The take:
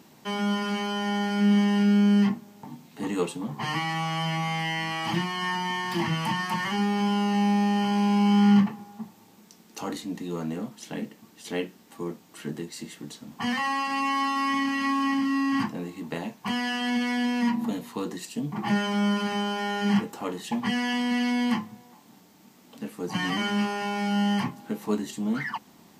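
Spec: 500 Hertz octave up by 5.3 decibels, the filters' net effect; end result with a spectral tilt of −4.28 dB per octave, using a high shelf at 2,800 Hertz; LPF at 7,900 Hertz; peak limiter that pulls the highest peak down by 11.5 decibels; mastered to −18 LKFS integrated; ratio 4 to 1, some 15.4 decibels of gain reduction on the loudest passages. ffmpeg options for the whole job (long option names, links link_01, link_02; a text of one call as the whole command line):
ffmpeg -i in.wav -af "lowpass=7900,equalizer=frequency=500:width_type=o:gain=6.5,highshelf=frequency=2800:gain=7,acompressor=threshold=-34dB:ratio=4,volume=19.5dB,alimiter=limit=-9dB:level=0:latency=1" out.wav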